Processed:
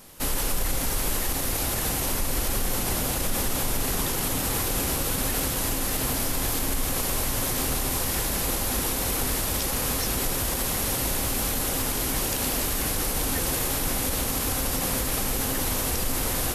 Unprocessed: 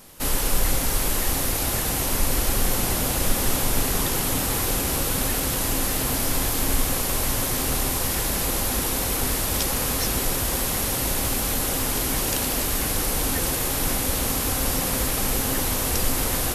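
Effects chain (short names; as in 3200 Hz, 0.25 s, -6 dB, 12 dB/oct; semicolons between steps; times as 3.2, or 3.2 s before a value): limiter -15 dBFS, peak gain reduction 7 dB; gain -1 dB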